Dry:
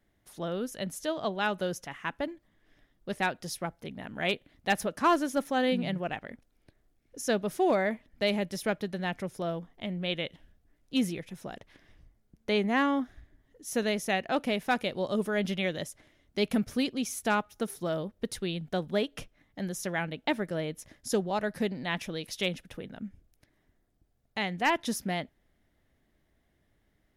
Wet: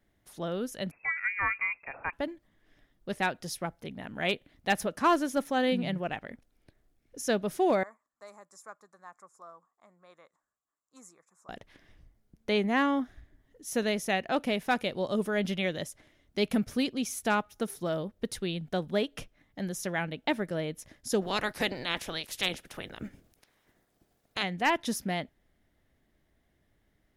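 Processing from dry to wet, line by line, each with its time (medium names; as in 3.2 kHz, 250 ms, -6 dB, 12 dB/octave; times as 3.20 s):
0.91–2.13 s: frequency inversion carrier 2.6 kHz
7.83–11.49 s: two resonant band-passes 2.9 kHz, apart 2.7 oct
21.21–24.42 s: spectral peaks clipped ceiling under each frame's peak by 20 dB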